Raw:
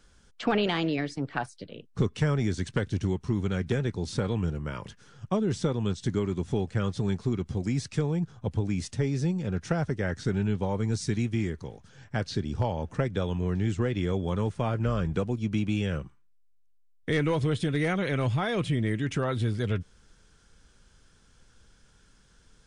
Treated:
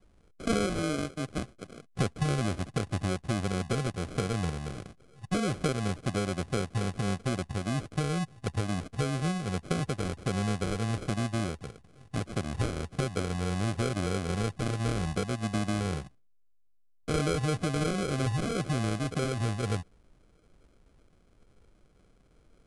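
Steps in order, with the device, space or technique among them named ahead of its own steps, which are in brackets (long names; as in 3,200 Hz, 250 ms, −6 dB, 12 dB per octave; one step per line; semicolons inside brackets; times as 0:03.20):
crushed at another speed (tape speed factor 2×; decimation without filtering 24×; tape speed factor 0.5×)
level −2.5 dB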